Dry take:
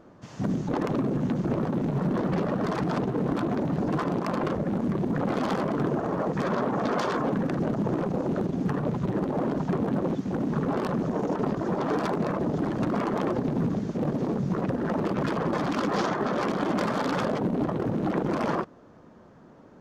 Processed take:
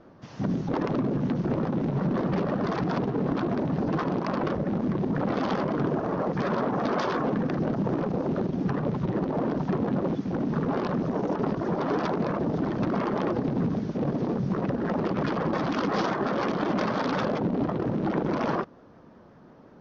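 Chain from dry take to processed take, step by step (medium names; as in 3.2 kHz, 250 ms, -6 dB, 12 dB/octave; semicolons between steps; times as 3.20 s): vibrato 5.6 Hz 78 cents; steep low-pass 6 kHz 48 dB/octave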